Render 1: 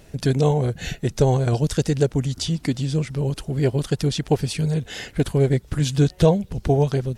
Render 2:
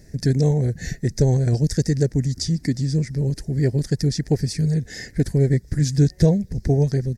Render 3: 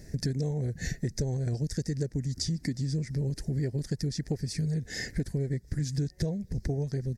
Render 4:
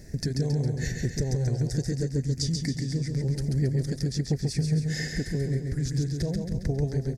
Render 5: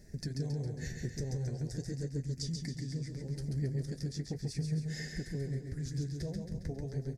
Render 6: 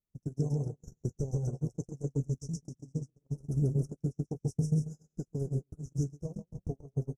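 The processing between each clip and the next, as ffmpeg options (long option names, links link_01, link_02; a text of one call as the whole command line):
ffmpeg -i in.wav -af "firequalizer=gain_entry='entry(200,0);entry(1200,-21);entry(1800,1);entry(2900,-22);entry(4900,2);entry(9000,-5)':delay=0.05:min_phase=1,volume=2dB" out.wav
ffmpeg -i in.wav -af "acompressor=threshold=-28dB:ratio=6" out.wav
ffmpeg -i in.wav -af "aecho=1:1:136|272|408|544|680|816|952:0.596|0.316|0.167|0.0887|0.047|0.0249|0.0132,volume=1.5dB" out.wav
ffmpeg -i in.wav -af "flanger=delay=4.8:depth=9.6:regen=-49:speed=0.4:shape=sinusoidal,volume=-6dB" out.wav
ffmpeg -i in.wav -af "agate=range=-44dB:threshold=-35dB:ratio=16:detection=peak,asuperstop=centerf=2800:order=20:qfactor=0.67,volume=6dB" out.wav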